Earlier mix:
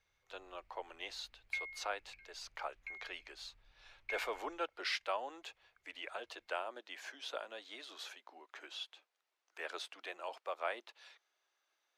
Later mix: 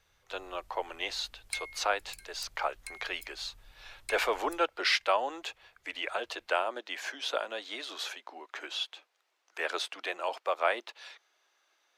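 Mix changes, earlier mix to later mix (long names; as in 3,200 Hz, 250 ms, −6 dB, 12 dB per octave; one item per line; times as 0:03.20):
speech +10.5 dB
background: remove transistor ladder low-pass 2,600 Hz, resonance 65%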